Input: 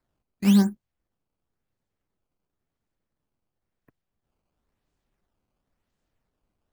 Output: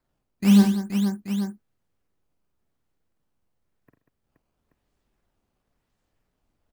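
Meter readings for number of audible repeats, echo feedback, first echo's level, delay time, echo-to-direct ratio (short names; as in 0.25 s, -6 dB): 6, no steady repeat, -5.5 dB, 49 ms, -1.5 dB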